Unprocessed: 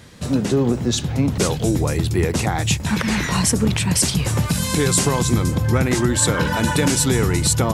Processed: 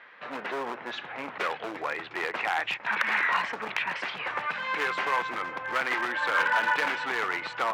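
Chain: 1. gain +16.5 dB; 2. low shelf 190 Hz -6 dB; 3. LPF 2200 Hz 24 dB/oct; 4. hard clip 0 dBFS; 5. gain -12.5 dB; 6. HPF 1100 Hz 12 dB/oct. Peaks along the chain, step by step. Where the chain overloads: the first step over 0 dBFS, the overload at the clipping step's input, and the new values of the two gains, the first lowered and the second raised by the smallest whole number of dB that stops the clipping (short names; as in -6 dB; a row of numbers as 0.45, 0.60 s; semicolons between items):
+11.5, +11.5, +9.5, 0.0, -12.5, -10.0 dBFS; step 1, 9.5 dB; step 1 +6.5 dB, step 5 -2.5 dB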